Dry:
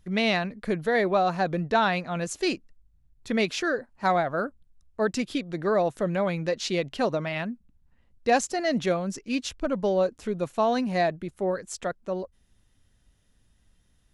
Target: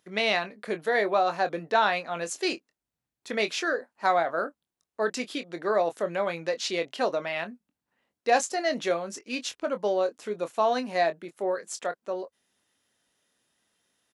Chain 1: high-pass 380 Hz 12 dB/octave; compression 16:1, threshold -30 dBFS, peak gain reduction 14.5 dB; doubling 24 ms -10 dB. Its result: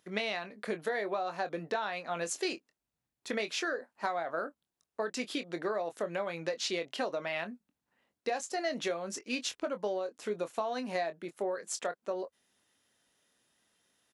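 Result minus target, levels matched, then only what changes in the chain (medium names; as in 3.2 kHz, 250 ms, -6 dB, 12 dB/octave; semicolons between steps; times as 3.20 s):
compression: peak gain reduction +14.5 dB
remove: compression 16:1, threshold -30 dBFS, peak gain reduction 14.5 dB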